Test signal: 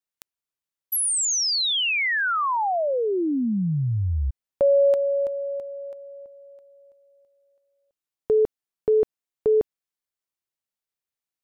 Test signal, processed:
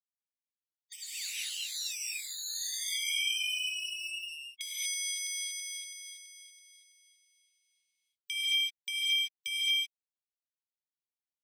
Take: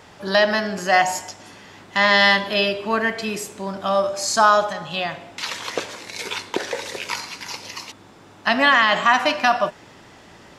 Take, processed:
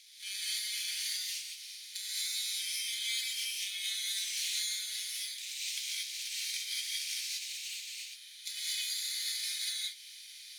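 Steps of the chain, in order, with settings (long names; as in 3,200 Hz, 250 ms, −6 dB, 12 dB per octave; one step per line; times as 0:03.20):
samples in bit-reversed order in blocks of 16 samples
gate on every frequency bin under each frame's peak −15 dB weak
Butterworth high-pass 2,400 Hz 36 dB per octave
brickwall limiter −16.5 dBFS
downward compressor, threshold −35 dBFS
high-frequency loss of the air 68 metres
reverb whose tail is shaped and stops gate 260 ms rising, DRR −6 dB
level +4 dB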